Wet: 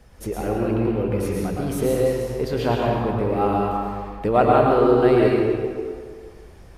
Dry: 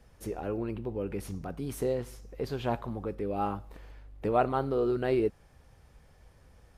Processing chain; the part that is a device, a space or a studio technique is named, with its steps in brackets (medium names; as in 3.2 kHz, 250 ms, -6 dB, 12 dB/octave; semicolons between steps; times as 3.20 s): stairwell (reverberation RT60 2.0 s, pre-delay 103 ms, DRR -3 dB); trim +7.5 dB